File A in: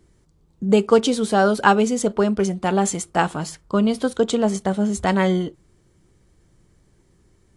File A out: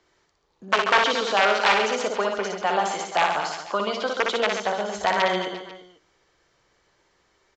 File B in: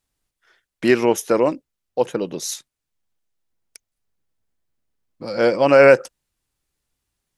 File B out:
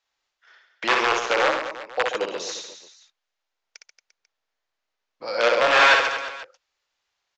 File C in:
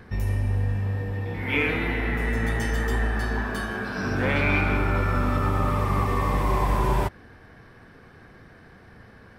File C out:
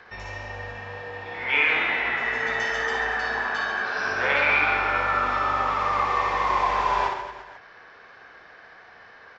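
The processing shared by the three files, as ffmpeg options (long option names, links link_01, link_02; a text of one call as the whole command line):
ffmpeg -i in.wav -filter_complex "[0:a]aresample=16000,aeval=exprs='(mod(2.66*val(0)+1,2)-1)/2.66':channel_layout=same,aresample=44100,acrossover=split=3200[link_01][link_02];[link_02]acompressor=threshold=-32dB:ratio=4:attack=1:release=60[link_03];[link_01][link_03]amix=inputs=2:normalize=0,alimiter=limit=-13dB:level=0:latency=1:release=22,acrossover=split=530 6300:gain=0.0631 1 0.1[link_04][link_05][link_06];[link_04][link_05][link_06]amix=inputs=3:normalize=0,aecho=1:1:60|135|228.8|345.9|492.4:0.631|0.398|0.251|0.158|0.1,volume=4dB" out.wav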